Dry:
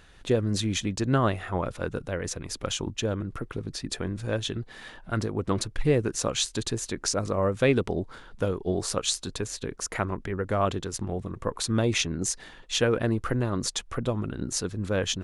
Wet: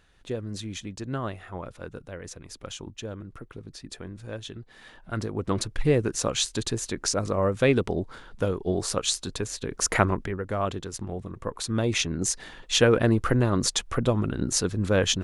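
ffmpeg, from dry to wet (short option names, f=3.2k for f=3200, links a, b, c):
-af "volume=16dB,afade=t=in:st=4.67:d=1.02:silence=0.354813,afade=t=in:st=9.69:d=0.2:silence=0.398107,afade=t=out:st=9.89:d=0.5:silence=0.266073,afade=t=in:st=11.65:d=1.15:silence=0.446684"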